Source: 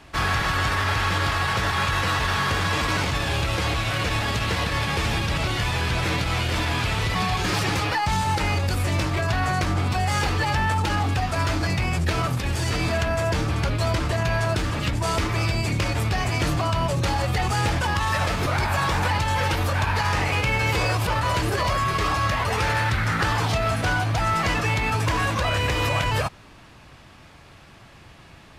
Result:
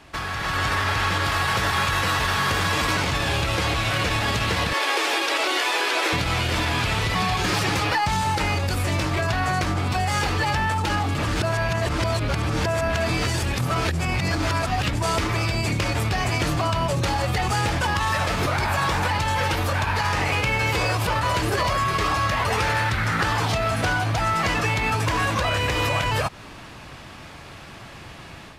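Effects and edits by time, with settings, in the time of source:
1.25–2.95 high shelf 9800 Hz +6.5 dB
4.73–6.13 steep high-pass 310 Hz 48 dB/oct
11.15–14.83 reverse
whole clip: compressor, threshold -27 dBFS; low shelf 120 Hz -4 dB; AGC gain up to 8 dB

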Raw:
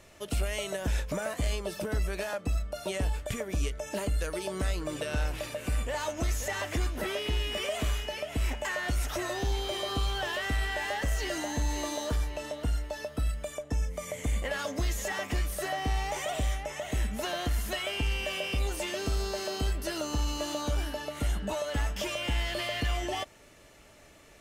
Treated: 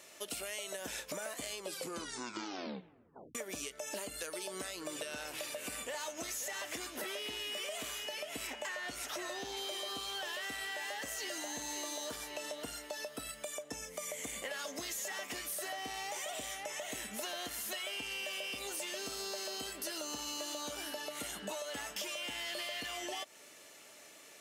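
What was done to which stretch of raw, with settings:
1.58 tape stop 1.77 s
8.47–9.57 high shelf 7300 Hz -9 dB
whole clip: HPF 270 Hz 12 dB/oct; high shelf 2800 Hz +9.5 dB; compressor, threshold -35 dBFS; gain -3 dB

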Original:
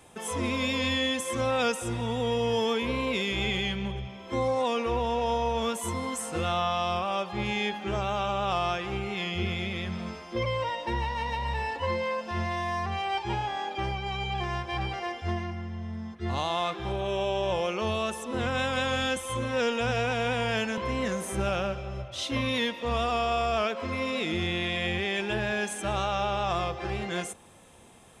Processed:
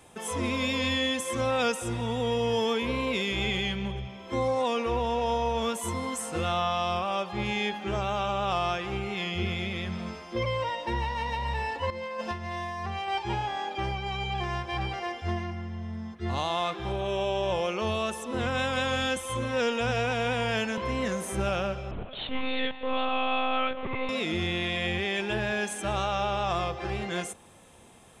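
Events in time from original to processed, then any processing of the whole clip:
11.9–13.08 negative-ratio compressor -33 dBFS, ratio -0.5
21.91–24.09 monotone LPC vocoder at 8 kHz 260 Hz

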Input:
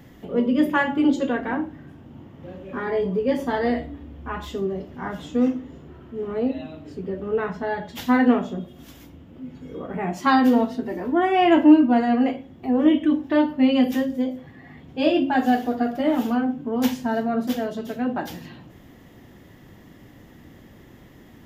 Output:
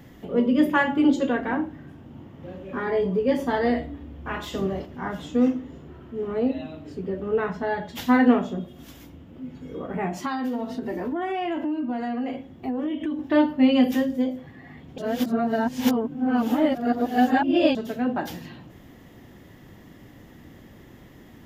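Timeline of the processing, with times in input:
4.25–4.85 spectral limiter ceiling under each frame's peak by 13 dB
10.06–13.19 compressor 10:1, threshold -24 dBFS
14.98–17.75 reverse

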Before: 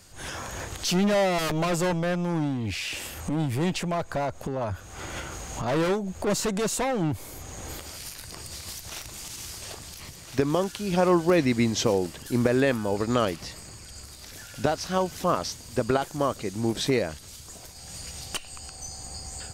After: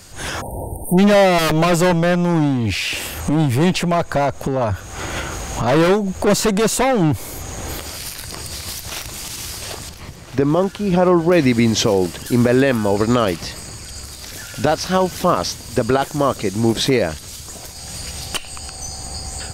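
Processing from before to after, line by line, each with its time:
0.41–0.98 spectral delete 960–8500 Hz
9.89–11.32 high shelf 2600 Hz -12 dB
whole clip: dynamic EQ 6900 Hz, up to -3 dB, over -44 dBFS, Q 1.7; maximiser +15 dB; gain -4.5 dB

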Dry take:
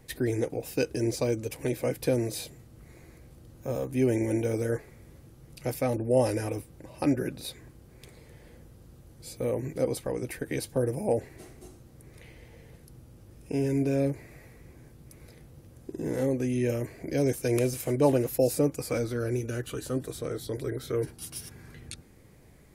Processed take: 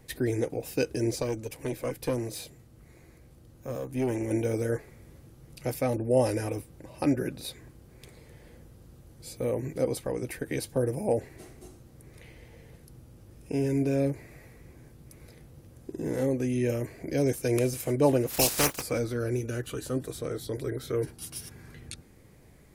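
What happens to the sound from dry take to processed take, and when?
1.22–4.31 tube stage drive 18 dB, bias 0.6
18.29–18.81 spectral contrast lowered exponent 0.29

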